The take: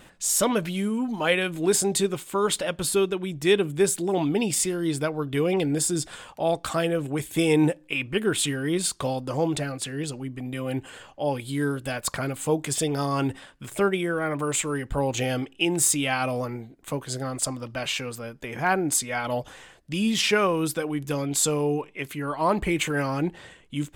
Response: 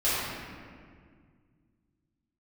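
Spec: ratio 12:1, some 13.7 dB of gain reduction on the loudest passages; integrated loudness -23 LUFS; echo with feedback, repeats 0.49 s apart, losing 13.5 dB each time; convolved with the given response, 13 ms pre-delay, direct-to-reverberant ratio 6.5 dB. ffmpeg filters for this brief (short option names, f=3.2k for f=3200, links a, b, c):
-filter_complex "[0:a]acompressor=threshold=-30dB:ratio=12,aecho=1:1:490|980:0.211|0.0444,asplit=2[a][b];[1:a]atrim=start_sample=2205,adelay=13[c];[b][c]afir=irnorm=-1:irlink=0,volume=-19.5dB[d];[a][d]amix=inputs=2:normalize=0,volume=10dB"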